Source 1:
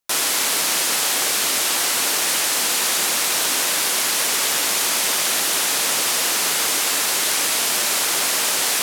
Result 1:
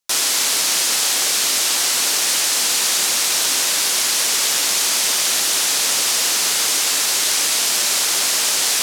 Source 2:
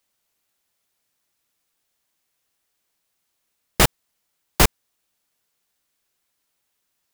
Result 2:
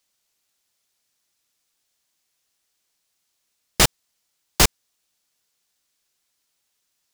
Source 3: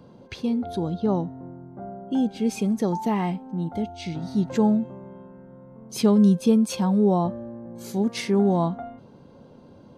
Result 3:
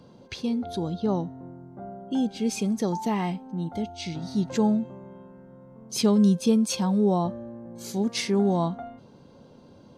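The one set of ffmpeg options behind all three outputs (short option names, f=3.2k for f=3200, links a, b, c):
-af "equalizer=f=5.6k:t=o:w=1.9:g=7,volume=-2.5dB"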